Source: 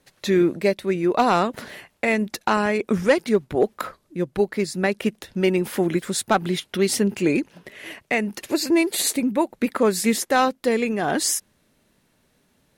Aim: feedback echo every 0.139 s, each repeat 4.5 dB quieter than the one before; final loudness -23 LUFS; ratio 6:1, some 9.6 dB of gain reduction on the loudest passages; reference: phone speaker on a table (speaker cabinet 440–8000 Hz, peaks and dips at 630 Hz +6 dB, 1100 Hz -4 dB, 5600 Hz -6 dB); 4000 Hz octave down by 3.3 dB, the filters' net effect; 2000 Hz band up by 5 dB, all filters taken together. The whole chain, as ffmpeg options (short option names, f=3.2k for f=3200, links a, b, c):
-af "equalizer=f=2k:t=o:g=7.5,equalizer=f=4k:t=o:g=-5,acompressor=threshold=-22dB:ratio=6,highpass=f=440:w=0.5412,highpass=f=440:w=1.3066,equalizer=f=630:t=q:w=4:g=6,equalizer=f=1.1k:t=q:w=4:g=-4,equalizer=f=5.6k:t=q:w=4:g=-6,lowpass=f=8k:w=0.5412,lowpass=f=8k:w=1.3066,aecho=1:1:139|278|417|556|695|834|973|1112|1251:0.596|0.357|0.214|0.129|0.0772|0.0463|0.0278|0.0167|0.01,volume=5dB"